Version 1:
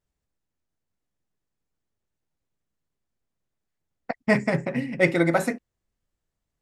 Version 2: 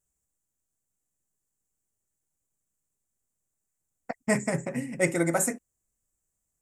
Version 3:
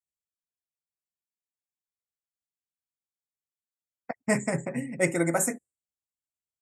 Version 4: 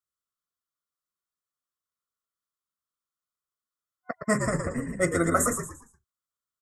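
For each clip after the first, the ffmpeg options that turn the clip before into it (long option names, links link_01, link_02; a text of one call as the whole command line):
ffmpeg -i in.wav -af "highshelf=frequency=5600:width_type=q:width=3:gain=11.5,volume=-4.5dB" out.wav
ffmpeg -i in.wav -af "afftdn=noise_reduction=20:noise_floor=-51,highpass=57" out.wav
ffmpeg -i in.wav -filter_complex "[0:a]superequalizer=9b=0.398:10b=3.55:12b=0.251,asplit=5[link_01][link_02][link_03][link_04][link_05];[link_02]adelay=115,afreqshift=-79,volume=-6dB[link_06];[link_03]adelay=230,afreqshift=-158,volume=-15.9dB[link_07];[link_04]adelay=345,afreqshift=-237,volume=-25.8dB[link_08];[link_05]adelay=460,afreqshift=-316,volume=-35.7dB[link_09];[link_01][link_06][link_07][link_08][link_09]amix=inputs=5:normalize=0" out.wav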